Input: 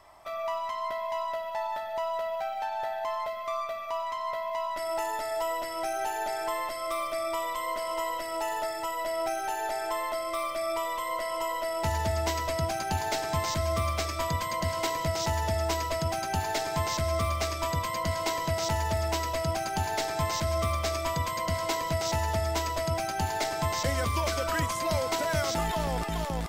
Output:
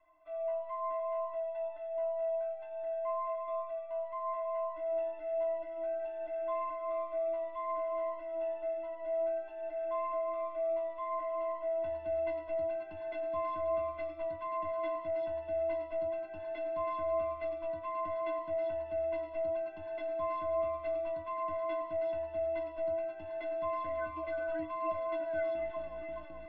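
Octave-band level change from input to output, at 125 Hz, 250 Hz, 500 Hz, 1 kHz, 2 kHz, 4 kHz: below −25 dB, −12.0 dB, −1.5 dB, −8.5 dB, −14.5 dB, below −25 dB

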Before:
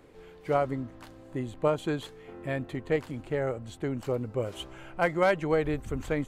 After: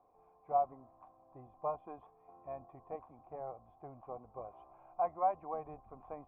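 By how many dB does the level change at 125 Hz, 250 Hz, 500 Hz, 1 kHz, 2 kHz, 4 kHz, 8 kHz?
−24.0 dB, −23.0 dB, −13.0 dB, −2.0 dB, −30.0 dB, below −40 dB, below −30 dB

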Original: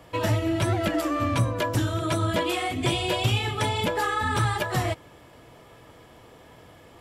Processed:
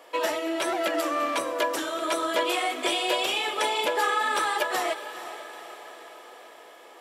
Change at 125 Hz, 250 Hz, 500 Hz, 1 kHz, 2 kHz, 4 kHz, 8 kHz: below −35 dB, −6.0 dB, +1.0 dB, +1.5 dB, +2.0 dB, +2.0 dB, +2.0 dB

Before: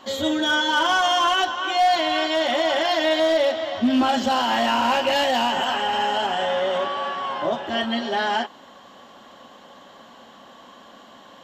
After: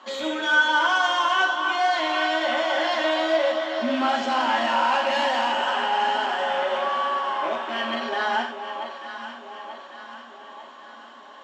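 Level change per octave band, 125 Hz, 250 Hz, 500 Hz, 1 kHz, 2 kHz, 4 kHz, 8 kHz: below −10 dB, −6.0 dB, −3.0 dB, −0.5 dB, +2.5 dB, −4.0 dB, −5.5 dB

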